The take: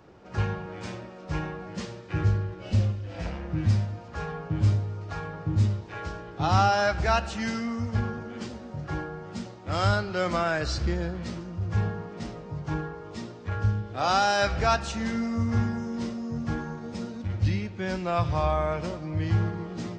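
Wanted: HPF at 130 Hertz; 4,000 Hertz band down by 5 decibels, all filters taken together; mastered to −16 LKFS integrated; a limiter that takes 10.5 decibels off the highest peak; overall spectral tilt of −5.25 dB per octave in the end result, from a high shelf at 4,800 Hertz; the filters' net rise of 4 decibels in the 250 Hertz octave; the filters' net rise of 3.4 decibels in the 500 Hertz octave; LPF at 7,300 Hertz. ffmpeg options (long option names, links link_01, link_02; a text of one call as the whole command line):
ffmpeg -i in.wav -af "highpass=130,lowpass=7300,equalizer=frequency=250:width_type=o:gain=5,equalizer=frequency=500:width_type=o:gain=3.5,equalizer=frequency=4000:width_type=o:gain=-3.5,highshelf=frequency=4800:gain=-5,volume=15dB,alimiter=limit=-5dB:level=0:latency=1" out.wav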